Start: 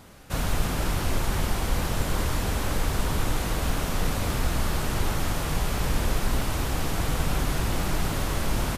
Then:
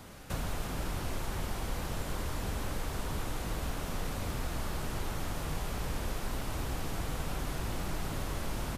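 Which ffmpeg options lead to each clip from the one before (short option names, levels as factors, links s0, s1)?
-filter_complex "[0:a]acrossover=split=290|1100[s0][s1][s2];[s0]acompressor=threshold=0.02:ratio=4[s3];[s1]acompressor=threshold=0.00631:ratio=4[s4];[s2]acompressor=threshold=0.00562:ratio=4[s5];[s3][s4][s5]amix=inputs=3:normalize=0"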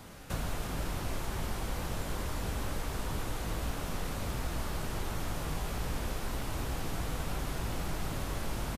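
-filter_complex "[0:a]asplit=2[s0][s1];[s1]adelay=18,volume=0.251[s2];[s0][s2]amix=inputs=2:normalize=0"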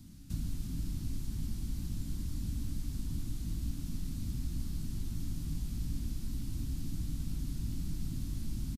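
-af "firequalizer=gain_entry='entry(280,0);entry(440,-28);entry(4400,-7)':delay=0.05:min_phase=1"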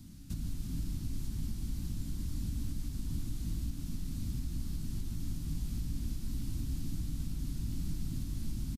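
-af "alimiter=level_in=1.58:limit=0.0631:level=0:latency=1:release=211,volume=0.631,volume=1.19"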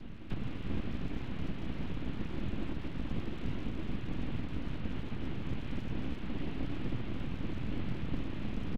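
-af "highpass=f=190:t=q:w=0.5412,highpass=f=190:t=q:w=1.307,lowpass=f=3000:t=q:w=0.5176,lowpass=f=3000:t=q:w=0.7071,lowpass=f=3000:t=q:w=1.932,afreqshift=-120,aeval=exprs='abs(val(0))':c=same,volume=5.01"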